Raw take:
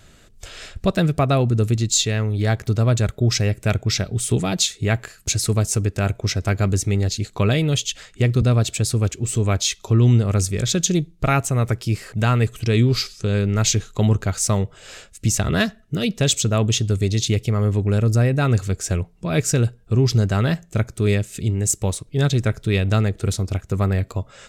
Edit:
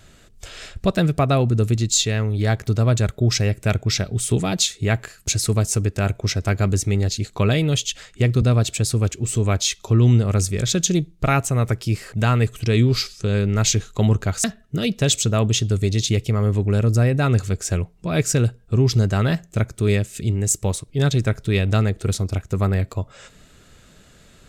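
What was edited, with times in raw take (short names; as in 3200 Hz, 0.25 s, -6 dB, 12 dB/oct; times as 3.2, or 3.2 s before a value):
14.44–15.63 cut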